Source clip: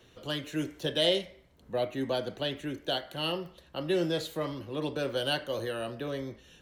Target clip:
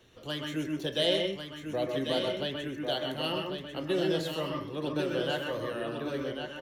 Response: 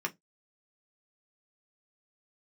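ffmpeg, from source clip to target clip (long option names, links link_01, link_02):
-filter_complex "[0:a]asettb=1/sr,asplit=3[link_01][link_02][link_03];[link_01]atrim=end=5.144[link_04];[link_02]atrim=start=5.14:end=6.14,asetpts=PTS-STARTPTS,afade=type=in:duration=0.004:curve=qsin,afade=type=out:start_time=0.996:duration=0.004:curve=qsin,acrossover=split=3100[link_05][link_06];[link_06]acompressor=threshold=-51dB:ratio=4:attack=1:release=60[link_07];[link_05][link_07]amix=inputs=2:normalize=0[link_08];[link_03]atrim=start=6.136[link_09];[link_04][link_08]acrossfade=duration=0.004:curve1=hsin:curve2=qsin[link_10];[link_10][link_09]acrossfade=duration=0.004:curve1=qsin:curve2=hsin,aecho=1:1:1095:0.473,asplit=2[link_11][link_12];[1:a]atrim=start_sample=2205,adelay=128[link_13];[link_12][link_13]afir=irnorm=-1:irlink=0,volume=-6.5dB[link_14];[link_11][link_14]amix=inputs=2:normalize=0,volume=-2dB"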